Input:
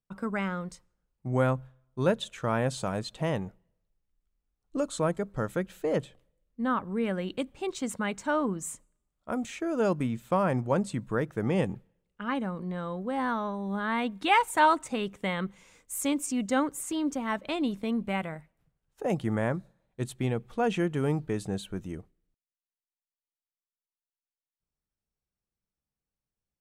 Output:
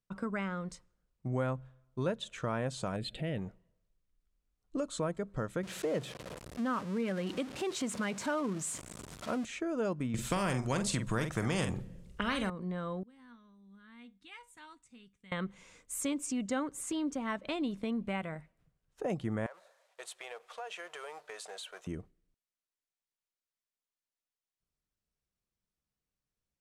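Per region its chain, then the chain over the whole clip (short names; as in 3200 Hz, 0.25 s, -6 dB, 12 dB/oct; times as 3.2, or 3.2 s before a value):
2.96–3.38 fixed phaser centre 2600 Hz, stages 4 + transient shaper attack -3 dB, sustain +6 dB
5.63–9.45 zero-crossing step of -35.5 dBFS + HPF 98 Hz
10.14–12.5 tone controls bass +14 dB, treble +7 dB + doubler 45 ms -10 dB + spectral compressor 2:1
13.03–15.32 passive tone stack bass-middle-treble 6-0-2 + resonator 240 Hz, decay 0.22 s
19.46–21.87 G.711 law mismatch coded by mu + inverse Chebyshev high-pass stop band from 280 Hz + compressor 5:1, threshold -40 dBFS
whole clip: LPF 9500 Hz 12 dB/oct; notch 840 Hz, Q 12; compressor 2:1, threshold -35 dBFS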